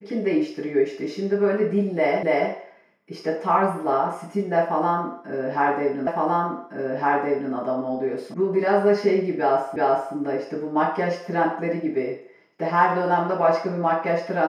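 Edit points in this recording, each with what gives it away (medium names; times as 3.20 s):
2.23 s: repeat of the last 0.28 s
6.07 s: repeat of the last 1.46 s
8.34 s: sound stops dead
9.76 s: repeat of the last 0.38 s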